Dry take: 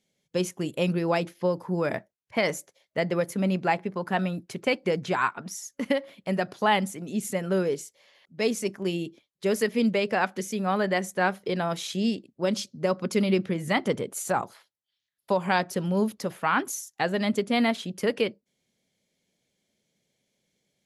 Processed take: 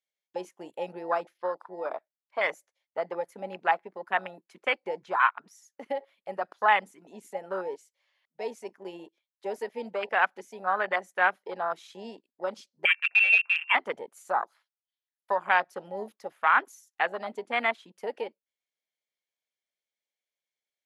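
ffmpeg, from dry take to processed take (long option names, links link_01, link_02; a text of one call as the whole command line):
ffmpeg -i in.wav -filter_complex "[0:a]asplit=3[link_01][link_02][link_03];[link_01]afade=type=out:start_time=1.37:duration=0.02[link_04];[link_02]highpass=200,equalizer=frequency=220:width_type=q:width=4:gain=-7,equalizer=frequency=1800:width_type=q:width=4:gain=-7,equalizer=frequency=3800:width_type=q:width=4:gain=4,equalizer=frequency=6600:width_type=q:width=4:gain=-5,lowpass=frequency=9600:width=0.5412,lowpass=frequency=9600:width=1.3066,afade=type=in:start_time=1.37:duration=0.02,afade=type=out:start_time=2.39:duration=0.02[link_05];[link_03]afade=type=in:start_time=2.39:duration=0.02[link_06];[link_04][link_05][link_06]amix=inputs=3:normalize=0,asettb=1/sr,asplit=3[link_07][link_08][link_09];[link_07]atrim=end=12.854[link_10];[link_08]atrim=start=12.85:end=13.75,asetpts=PTS-STARTPTS,afade=type=in:duration=0.004:curve=qsin,afade=type=out:start_time=0.896:duration=0.004:curve=qsin,lowpass=frequency=2500:width_type=q:width=0.5098,lowpass=frequency=2500:width_type=q:width=0.6013,lowpass=frequency=2500:width_type=q:width=0.9,lowpass=frequency=2500:width_type=q:width=2.563,afreqshift=-2900[link_11];[link_09]atrim=start=13.746[link_12];[link_10][link_11]acrossfade=duration=0.004:curve1=hsin:curve2=qsin[link_13];[link_13][link_12]acrossfade=duration=0.004:curve1=qsin:curve2=hsin,afwtdn=0.0355,highpass=1100,highshelf=frequency=2700:gain=-11.5,volume=8dB" out.wav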